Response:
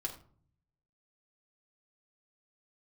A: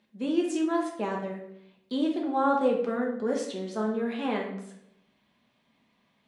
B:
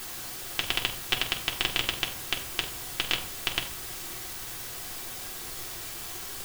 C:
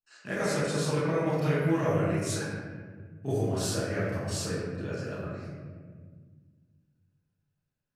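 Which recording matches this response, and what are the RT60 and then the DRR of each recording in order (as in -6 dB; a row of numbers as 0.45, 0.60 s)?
B; 0.75, 0.50, 1.7 s; -1.0, -0.5, -14.0 dB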